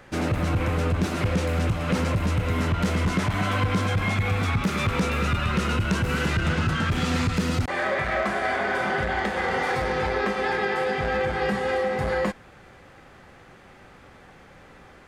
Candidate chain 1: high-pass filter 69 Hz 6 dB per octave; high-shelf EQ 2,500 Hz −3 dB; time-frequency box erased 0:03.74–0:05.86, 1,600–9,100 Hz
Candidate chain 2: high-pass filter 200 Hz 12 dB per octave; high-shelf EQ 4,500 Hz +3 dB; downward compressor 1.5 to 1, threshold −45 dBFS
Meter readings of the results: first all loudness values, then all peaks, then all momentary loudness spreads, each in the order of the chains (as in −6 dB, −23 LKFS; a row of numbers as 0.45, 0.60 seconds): −26.0, −34.0 LKFS; −14.5, −20.0 dBFS; 1, 17 LU